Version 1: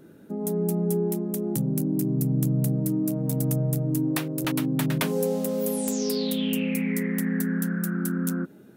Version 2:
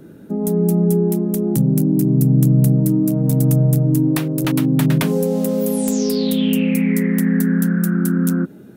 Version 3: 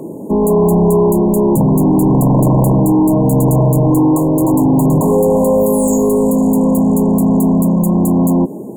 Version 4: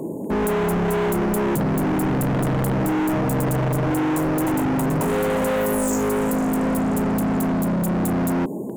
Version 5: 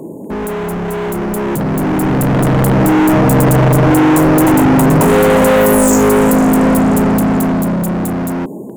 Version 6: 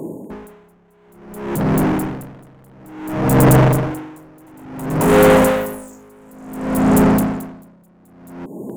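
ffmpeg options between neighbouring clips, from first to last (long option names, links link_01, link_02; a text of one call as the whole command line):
ffmpeg -i in.wav -filter_complex "[0:a]lowshelf=frequency=320:gain=6.5,acrossover=split=300[link_01][link_02];[link_02]acompressor=threshold=-24dB:ratio=6[link_03];[link_01][link_03]amix=inputs=2:normalize=0,volume=5.5dB" out.wav
ffmpeg -i in.wav -filter_complex "[0:a]aeval=exprs='0.376*(abs(mod(val(0)/0.376+3,4)-2)-1)':channel_layout=same,asplit=2[link_01][link_02];[link_02]highpass=frequency=720:poles=1,volume=25dB,asoftclip=type=tanh:threshold=-8dB[link_03];[link_01][link_03]amix=inputs=2:normalize=0,lowpass=frequency=3200:poles=1,volume=-6dB,afftfilt=real='re*(1-between(b*sr/4096,1100,6600))':imag='im*(1-between(b*sr/4096,1100,6600))':win_size=4096:overlap=0.75,volume=3.5dB" out.wav
ffmpeg -i in.wav -af "asoftclip=type=hard:threshold=-18dB,volume=-2dB" out.wav
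ffmpeg -i in.wav -af "dynaudnorm=framelen=480:gausssize=9:maxgain=11dB,volume=1dB" out.wav
ffmpeg -i in.wav -af "aeval=exprs='val(0)*pow(10,-35*(0.5-0.5*cos(2*PI*0.57*n/s))/20)':channel_layout=same" out.wav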